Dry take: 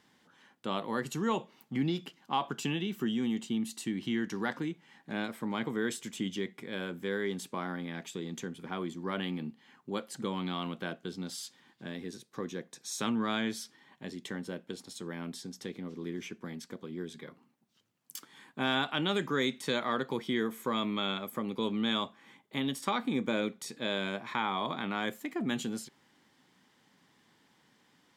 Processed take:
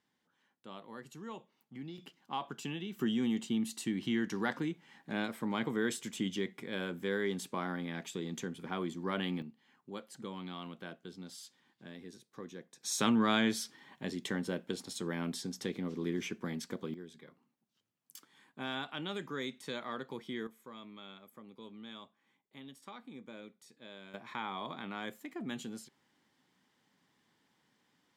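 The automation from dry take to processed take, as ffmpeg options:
-af "asetnsamples=n=441:p=0,asendcmd='1.98 volume volume -7dB;2.99 volume volume -0.5dB;9.42 volume volume -8.5dB;12.83 volume volume 3dB;16.94 volume volume -9dB;20.47 volume volume -18dB;24.14 volume volume -7.5dB',volume=-14.5dB"

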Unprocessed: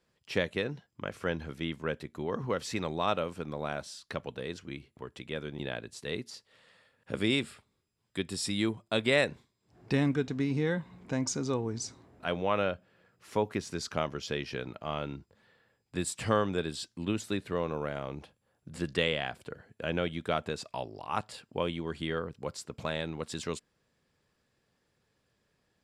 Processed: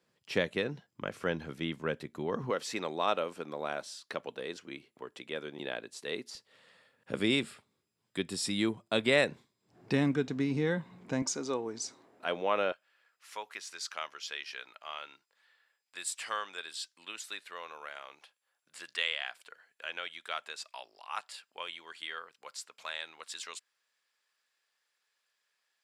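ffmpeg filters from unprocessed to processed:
-af "asetnsamples=n=441:p=0,asendcmd='2.5 highpass f 300;6.35 highpass f 140;11.22 highpass f 330;12.72 highpass f 1300',highpass=130"

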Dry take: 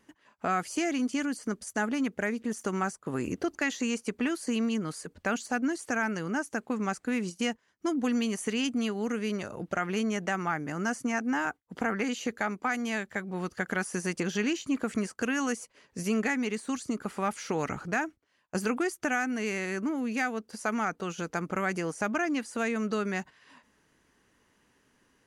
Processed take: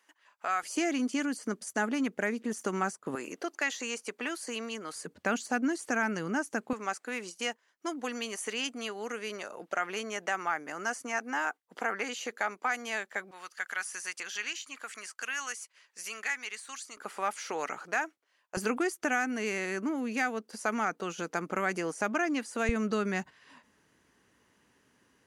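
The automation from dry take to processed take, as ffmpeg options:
-af "asetnsamples=n=441:p=0,asendcmd='0.63 highpass f 200;3.15 highpass f 500;4.96 highpass f 160;6.73 highpass f 500;13.31 highpass f 1300;16.97 highpass f 530;18.57 highpass f 230;22.69 highpass f 61',highpass=830"

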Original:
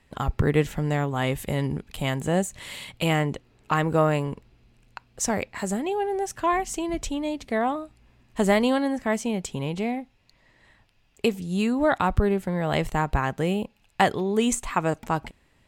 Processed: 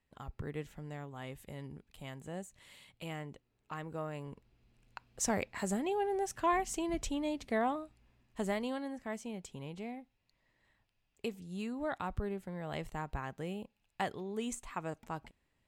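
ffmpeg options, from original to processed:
-af "volume=-7dB,afade=t=in:st=4.12:d=0.96:silence=0.237137,afade=t=out:st=7.54:d=1.04:silence=0.375837"

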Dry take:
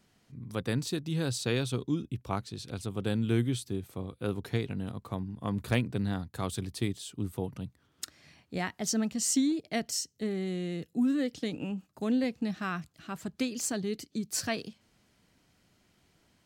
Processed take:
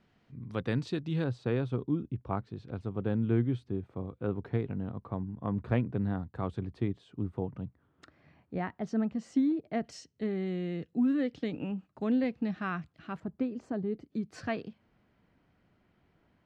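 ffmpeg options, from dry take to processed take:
-af "asetnsamples=n=441:p=0,asendcmd='1.24 lowpass f 1400;9.84 lowpass f 2500;13.2 lowpass f 1000;14.1 lowpass f 1900',lowpass=2.9k"

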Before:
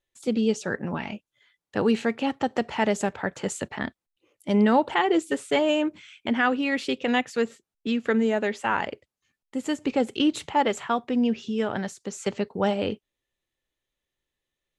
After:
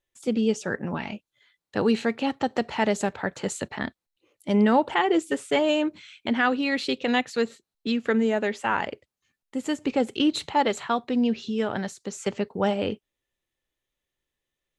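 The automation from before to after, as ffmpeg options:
-af "asetnsamples=n=441:p=0,asendcmd='0.94 equalizer g 6;4.49 equalizer g -1.5;5.64 equalizer g 10;7.92 equalizer g 1;10.31 equalizer g 11;11.5 equalizer g 4.5;12.16 equalizer g -3',equalizer=f=4.1k:t=o:w=0.21:g=-5"

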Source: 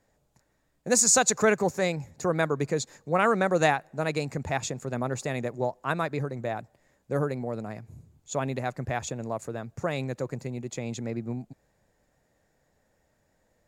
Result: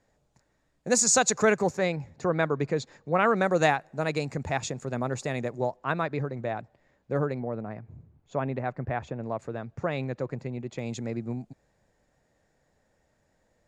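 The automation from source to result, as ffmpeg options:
-af "asetnsamples=n=441:p=0,asendcmd='1.77 lowpass f 4000;3.36 lowpass f 7600;5.76 lowpass f 4000;7.4 lowpass f 2000;9.24 lowpass f 3500;10.79 lowpass f 8500',lowpass=7.9k"

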